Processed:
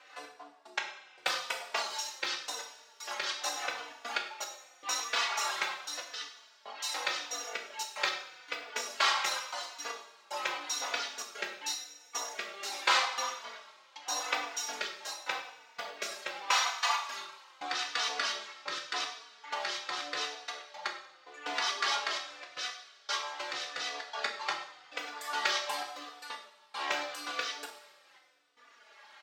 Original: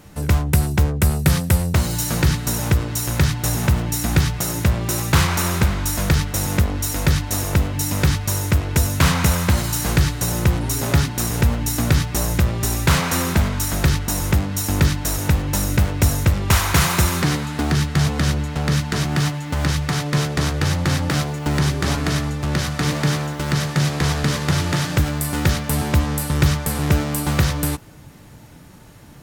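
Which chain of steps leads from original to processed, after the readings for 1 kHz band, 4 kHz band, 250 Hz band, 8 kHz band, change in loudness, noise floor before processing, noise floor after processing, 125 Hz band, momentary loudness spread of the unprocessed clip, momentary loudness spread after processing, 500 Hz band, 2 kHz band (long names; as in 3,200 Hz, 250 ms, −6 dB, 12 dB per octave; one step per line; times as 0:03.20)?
−8.0 dB, −7.0 dB, −33.5 dB, −14.5 dB, −14.5 dB, −42 dBFS, −60 dBFS, below −40 dB, 4 LU, 14 LU, −16.0 dB, −8.5 dB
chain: Bessel high-pass filter 1,100 Hz, order 4
reverb reduction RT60 1.1 s
dynamic equaliser 1,800 Hz, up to −8 dB, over −43 dBFS, Q 0.96
gate pattern "xx.x.x...xxxxx" 115 BPM −60 dB
rotating-speaker cabinet horn 6 Hz, later 0.8 Hz, at 0:04.37
high-frequency loss of the air 190 metres
coupled-rooms reverb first 0.59 s, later 2.4 s, from −17 dB, DRR 1 dB
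barber-pole flanger 3.4 ms −0.85 Hz
level +8 dB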